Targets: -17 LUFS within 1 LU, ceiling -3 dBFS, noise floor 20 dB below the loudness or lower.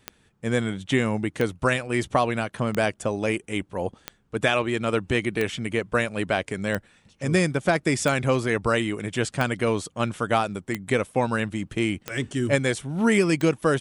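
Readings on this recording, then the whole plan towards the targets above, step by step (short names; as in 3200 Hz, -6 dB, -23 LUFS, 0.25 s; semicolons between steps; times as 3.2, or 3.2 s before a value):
clicks 11; loudness -25.0 LUFS; peak -7.5 dBFS; loudness target -17.0 LUFS
-> de-click; gain +8 dB; limiter -3 dBFS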